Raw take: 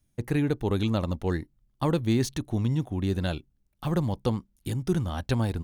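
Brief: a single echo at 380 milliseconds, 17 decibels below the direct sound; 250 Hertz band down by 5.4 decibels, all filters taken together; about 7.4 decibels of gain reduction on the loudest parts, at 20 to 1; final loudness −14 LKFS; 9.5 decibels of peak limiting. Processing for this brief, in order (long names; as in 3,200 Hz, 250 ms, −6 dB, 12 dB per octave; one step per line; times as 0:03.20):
parametric band 250 Hz −8 dB
downward compressor 20 to 1, threshold −30 dBFS
brickwall limiter −29 dBFS
single-tap delay 380 ms −17 dB
level +26 dB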